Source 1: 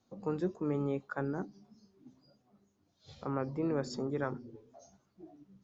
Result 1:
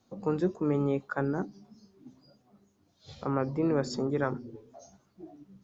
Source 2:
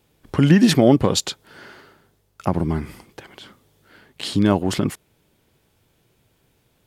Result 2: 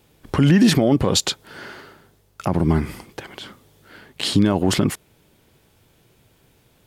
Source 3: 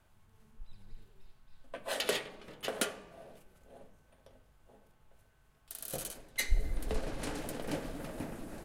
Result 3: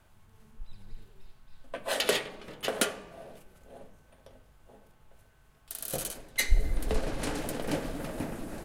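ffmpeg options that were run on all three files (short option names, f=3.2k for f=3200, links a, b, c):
-af "alimiter=limit=-12dB:level=0:latency=1:release=54,volume=5.5dB"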